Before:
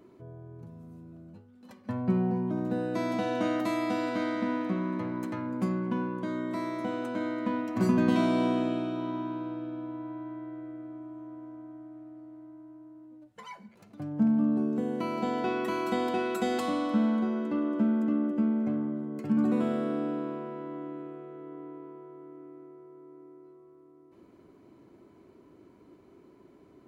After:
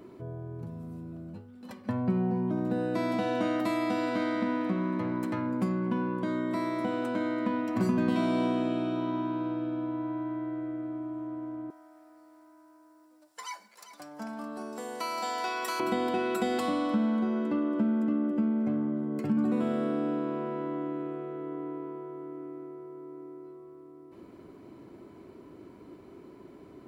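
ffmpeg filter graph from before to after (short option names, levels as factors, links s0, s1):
-filter_complex "[0:a]asettb=1/sr,asplit=3[s0][s1][s2];[s0]atrim=end=11.704[s3];[s1]atrim=start=11.7:end=15.8,asetpts=PTS-STARTPTS,afade=t=in:d=0.004:c=qsin,afade=t=out:st=4.096:d=0.004:c=qsin,highpass=860,highshelf=f=4000:t=q:w=1.5:g=8.5,aecho=1:1:396:0.224,atrim=end_sample=180810[s4];[s2]atrim=start=15.796[s5];[s3][s4]acrossfade=d=0.004:c1=hsin:c2=qsin[s6];[s6][s5]acrossfade=d=0.004:c1=qsin:c2=hsin,bandreject=f=6400:w=11,acompressor=threshold=0.0141:ratio=2,volume=2.11"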